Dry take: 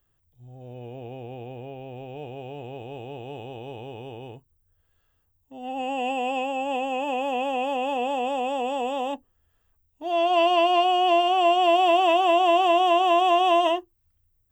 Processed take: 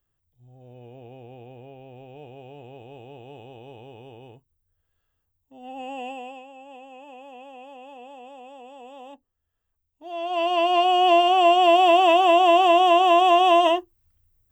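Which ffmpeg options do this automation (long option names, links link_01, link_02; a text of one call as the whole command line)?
ffmpeg -i in.wav -af "volume=14dB,afade=type=out:start_time=5.99:duration=0.44:silence=0.281838,afade=type=in:start_time=8.75:duration=1.46:silence=0.375837,afade=type=in:start_time=10.21:duration=0.84:silence=0.266073" out.wav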